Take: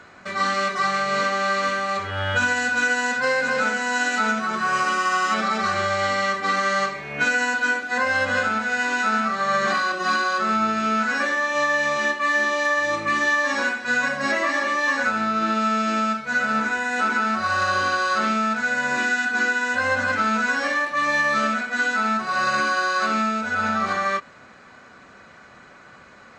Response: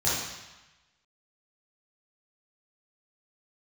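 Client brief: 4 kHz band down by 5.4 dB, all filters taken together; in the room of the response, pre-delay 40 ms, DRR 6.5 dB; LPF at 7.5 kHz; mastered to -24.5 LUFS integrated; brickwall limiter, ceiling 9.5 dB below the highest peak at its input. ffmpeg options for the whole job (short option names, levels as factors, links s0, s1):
-filter_complex "[0:a]lowpass=7500,equalizer=f=4000:t=o:g=-6.5,alimiter=limit=0.106:level=0:latency=1,asplit=2[s0][s1];[1:a]atrim=start_sample=2205,adelay=40[s2];[s1][s2]afir=irnorm=-1:irlink=0,volume=0.119[s3];[s0][s3]amix=inputs=2:normalize=0,volume=1.12"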